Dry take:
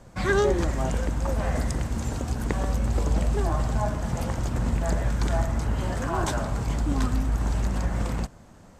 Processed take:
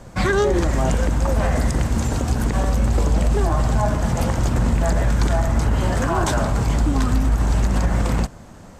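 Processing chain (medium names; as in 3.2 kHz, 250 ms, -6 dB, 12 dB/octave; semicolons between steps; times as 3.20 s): peak limiter -18.5 dBFS, peak gain reduction 10 dB; trim +8.5 dB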